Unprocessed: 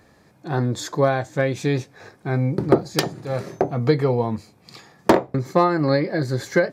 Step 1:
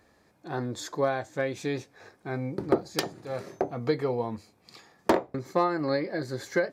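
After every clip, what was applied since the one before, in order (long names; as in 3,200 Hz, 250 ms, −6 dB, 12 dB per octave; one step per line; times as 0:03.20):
parametric band 140 Hz −7.5 dB 0.98 octaves
level −7 dB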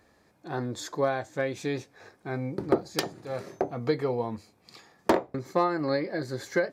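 no processing that can be heard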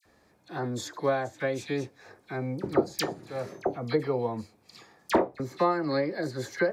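all-pass dispersion lows, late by 56 ms, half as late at 1,800 Hz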